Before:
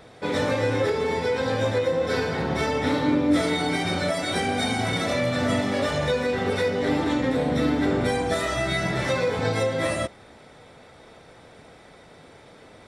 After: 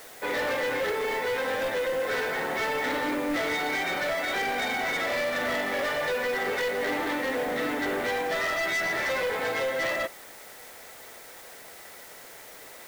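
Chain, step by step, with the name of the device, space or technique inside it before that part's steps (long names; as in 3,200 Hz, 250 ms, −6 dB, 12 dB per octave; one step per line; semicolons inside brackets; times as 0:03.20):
drive-through speaker (band-pass filter 430–3,100 Hz; parametric band 1,900 Hz +7 dB 0.51 octaves; hard clipping −25 dBFS, distortion −11 dB; white noise bed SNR 19 dB)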